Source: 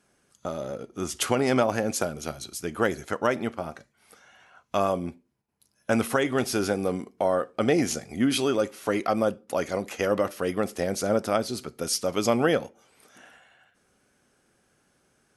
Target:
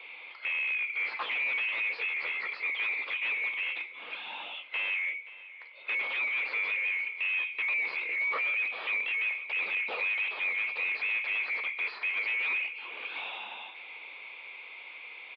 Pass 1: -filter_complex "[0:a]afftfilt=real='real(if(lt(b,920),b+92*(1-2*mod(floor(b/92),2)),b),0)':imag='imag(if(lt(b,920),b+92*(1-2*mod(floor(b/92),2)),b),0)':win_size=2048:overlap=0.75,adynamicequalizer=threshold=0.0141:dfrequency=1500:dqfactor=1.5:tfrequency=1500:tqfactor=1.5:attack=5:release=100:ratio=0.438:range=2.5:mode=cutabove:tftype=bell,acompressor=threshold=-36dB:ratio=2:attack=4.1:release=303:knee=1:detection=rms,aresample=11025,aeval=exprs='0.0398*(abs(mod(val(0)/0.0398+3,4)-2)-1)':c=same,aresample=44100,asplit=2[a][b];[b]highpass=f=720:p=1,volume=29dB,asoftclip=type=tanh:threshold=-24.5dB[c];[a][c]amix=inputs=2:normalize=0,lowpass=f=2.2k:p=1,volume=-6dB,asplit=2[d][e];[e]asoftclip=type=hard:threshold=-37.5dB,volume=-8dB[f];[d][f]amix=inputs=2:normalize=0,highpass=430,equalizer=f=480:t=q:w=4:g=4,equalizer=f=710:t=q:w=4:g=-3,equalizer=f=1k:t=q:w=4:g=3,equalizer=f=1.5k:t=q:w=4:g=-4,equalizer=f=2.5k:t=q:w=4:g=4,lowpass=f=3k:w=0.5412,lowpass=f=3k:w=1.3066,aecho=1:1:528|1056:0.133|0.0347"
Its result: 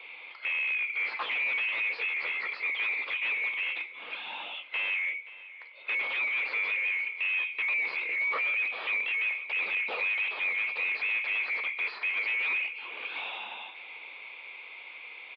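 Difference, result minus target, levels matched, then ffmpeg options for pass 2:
hard clip: distortion -5 dB
-filter_complex "[0:a]afftfilt=real='real(if(lt(b,920),b+92*(1-2*mod(floor(b/92),2)),b),0)':imag='imag(if(lt(b,920),b+92*(1-2*mod(floor(b/92),2)),b),0)':win_size=2048:overlap=0.75,adynamicequalizer=threshold=0.0141:dfrequency=1500:dqfactor=1.5:tfrequency=1500:tqfactor=1.5:attack=5:release=100:ratio=0.438:range=2.5:mode=cutabove:tftype=bell,acompressor=threshold=-36dB:ratio=2:attack=4.1:release=303:knee=1:detection=rms,aresample=11025,aeval=exprs='0.0398*(abs(mod(val(0)/0.0398+3,4)-2)-1)':c=same,aresample=44100,asplit=2[a][b];[b]highpass=f=720:p=1,volume=29dB,asoftclip=type=tanh:threshold=-24.5dB[c];[a][c]amix=inputs=2:normalize=0,lowpass=f=2.2k:p=1,volume=-6dB,asplit=2[d][e];[e]asoftclip=type=hard:threshold=-47dB,volume=-8dB[f];[d][f]amix=inputs=2:normalize=0,highpass=430,equalizer=f=480:t=q:w=4:g=4,equalizer=f=710:t=q:w=4:g=-3,equalizer=f=1k:t=q:w=4:g=3,equalizer=f=1.5k:t=q:w=4:g=-4,equalizer=f=2.5k:t=q:w=4:g=4,lowpass=f=3k:w=0.5412,lowpass=f=3k:w=1.3066,aecho=1:1:528|1056:0.133|0.0347"

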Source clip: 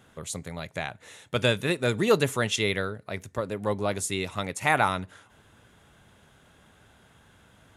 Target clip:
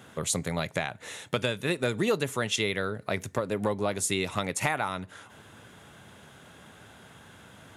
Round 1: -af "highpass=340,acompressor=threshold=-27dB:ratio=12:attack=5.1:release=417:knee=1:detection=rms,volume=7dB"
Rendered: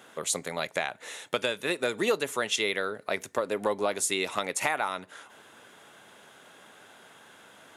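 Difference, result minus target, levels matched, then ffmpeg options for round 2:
125 Hz band -13.0 dB
-af "highpass=97,acompressor=threshold=-27dB:ratio=12:attack=5.1:release=417:knee=1:detection=rms,volume=7dB"

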